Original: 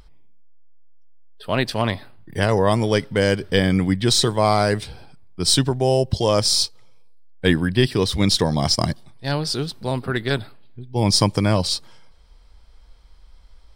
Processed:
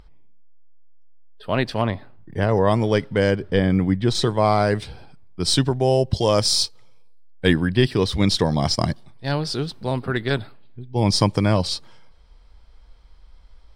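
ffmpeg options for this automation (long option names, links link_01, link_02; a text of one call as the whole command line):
ffmpeg -i in.wav -af "asetnsamples=nb_out_samples=441:pad=0,asendcmd='1.84 lowpass f 1200;2.55 lowpass f 2600;3.31 lowpass f 1300;4.15 lowpass f 2500;4.75 lowpass f 4600;6.13 lowpass f 9400;7.53 lowpass f 4200',lowpass=frequency=2800:poles=1" out.wav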